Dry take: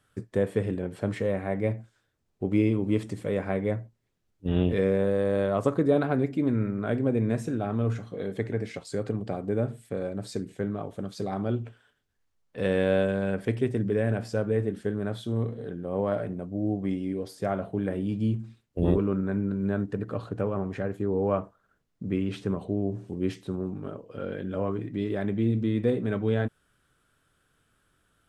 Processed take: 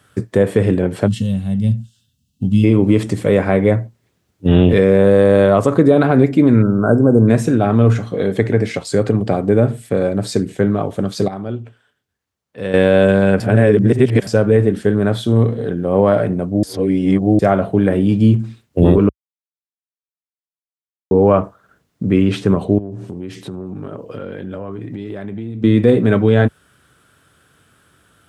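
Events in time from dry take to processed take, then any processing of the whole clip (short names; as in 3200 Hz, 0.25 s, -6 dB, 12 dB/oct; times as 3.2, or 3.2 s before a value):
1.07–2.64 spectral gain 260–2600 Hz -23 dB
6.62–7.28 brick-wall FIR band-stop 1600–5000 Hz
11.28–12.74 gain -11.5 dB
13.4–14.27 reverse
16.63–17.39 reverse
19.09–21.11 mute
22.78–25.64 compressor 8:1, threshold -39 dBFS
whole clip: HPF 62 Hz 24 dB/oct; maximiser +16 dB; gain -1 dB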